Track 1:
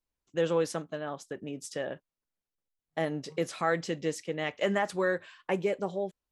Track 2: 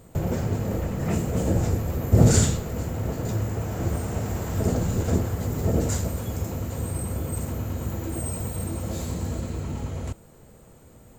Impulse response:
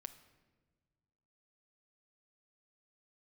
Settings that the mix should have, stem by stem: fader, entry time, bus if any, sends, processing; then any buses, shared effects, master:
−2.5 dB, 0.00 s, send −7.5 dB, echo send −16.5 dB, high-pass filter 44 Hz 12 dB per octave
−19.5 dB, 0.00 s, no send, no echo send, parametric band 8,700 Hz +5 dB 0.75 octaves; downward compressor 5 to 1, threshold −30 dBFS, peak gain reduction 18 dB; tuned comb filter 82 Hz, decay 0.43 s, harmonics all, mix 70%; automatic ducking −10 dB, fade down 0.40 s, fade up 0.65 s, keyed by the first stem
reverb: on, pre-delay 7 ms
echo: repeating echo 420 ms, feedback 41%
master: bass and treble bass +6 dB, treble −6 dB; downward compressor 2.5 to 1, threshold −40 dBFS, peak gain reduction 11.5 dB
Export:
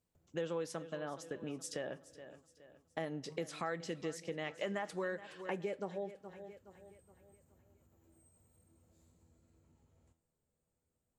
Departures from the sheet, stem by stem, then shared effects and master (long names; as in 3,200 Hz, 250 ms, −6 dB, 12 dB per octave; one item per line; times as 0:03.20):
stem 2 −19.5 dB → −29.0 dB
master: missing bass and treble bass +6 dB, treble −6 dB